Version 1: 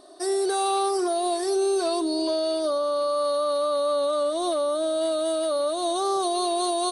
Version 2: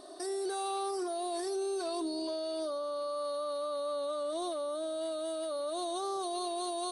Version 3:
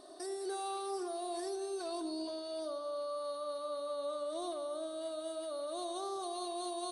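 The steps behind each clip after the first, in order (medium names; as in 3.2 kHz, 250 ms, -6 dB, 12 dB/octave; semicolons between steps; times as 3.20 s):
peak limiter -28.5 dBFS, peak gain reduction 11.5 dB
echo whose repeats swap between lows and highs 101 ms, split 1.1 kHz, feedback 60%, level -9.5 dB; trim -4.5 dB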